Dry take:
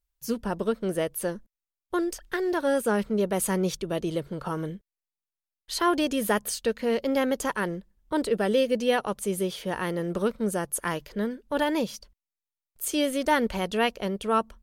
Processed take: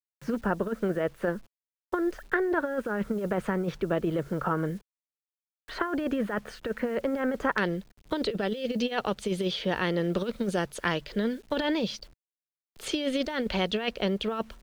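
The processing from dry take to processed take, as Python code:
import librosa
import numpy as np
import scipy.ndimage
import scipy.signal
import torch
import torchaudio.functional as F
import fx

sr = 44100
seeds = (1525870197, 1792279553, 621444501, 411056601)

y = fx.peak_eq(x, sr, hz=1000.0, db=-4.0, octaves=0.54)
y = fx.over_compress(y, sr, threshold_db=-27.0, ratio=-0.5)
y = fx.lowpass_res(y, sr, hz=fx.steps((0.0, 1500.0), (7.58, 4000.0)), q=1.9)
y = fx.quant_dither(y, sr, seeds[0], bits=10, dither='none')
y = fx.band_squash(y, sr, depth_pct=40)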